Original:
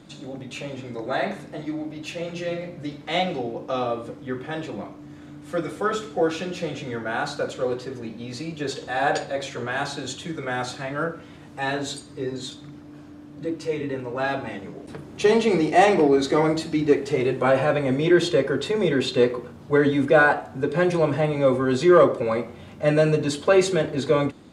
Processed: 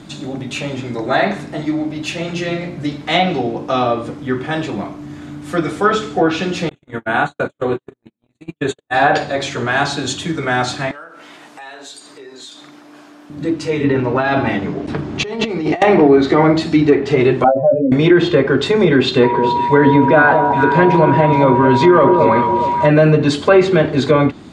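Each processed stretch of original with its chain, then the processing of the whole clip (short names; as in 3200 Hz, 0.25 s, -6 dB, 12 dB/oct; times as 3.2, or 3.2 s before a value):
6.69–8.94 gate -29 dBFS, range -57 dB + Butterworth band-stop 5100 Hz, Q 1.8
10.91–13.3 HPF 510 Hz + compressor 5:1, threshold -44 dBFS
13.84–15.82 air absorption 110 m + negative-ratio compressor -28 dBFS
17.44–17.92 spectral contrast raised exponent 3.8 + bell 87 Hz -6 dB 1.4 oct + doubler 18 ms -5.5 dB
19.23–22.87 whine 960 Hz -27 dBFS + echo with dull and thin repeats by turns 0.212 s, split 1000 Hz, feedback 61%, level -8 dB
whole clip: treble ducked by the level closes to 2500 Hz, closed at -16 dBFS; bell 510 Hz -9.5 dB 0.21 oct; maximiser +12 dB; gain -1 dB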